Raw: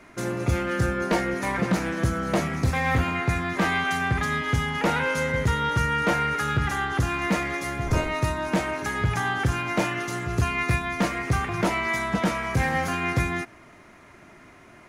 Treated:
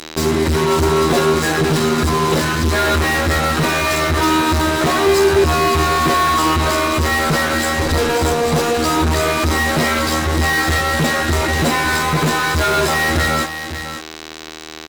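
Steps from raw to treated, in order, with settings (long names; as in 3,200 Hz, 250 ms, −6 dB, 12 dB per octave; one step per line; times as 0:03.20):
high-shelf EQ 2,300 Hz +9.5 dB
phases set to zero 102 Hz
flanger 1.8 Hz, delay 8.5 ms, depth 2.8 ms, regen −85%
pitch shifter −4.5 semitones
fuzz pedal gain 43 dB, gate −43 dBFS
hollow resonant body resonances 330/3,900 Hz, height 9 dB, ringing for 20 ms
on a send: single-tap delay 549 ms −10.5 dB
on the sum: level −1.5 dB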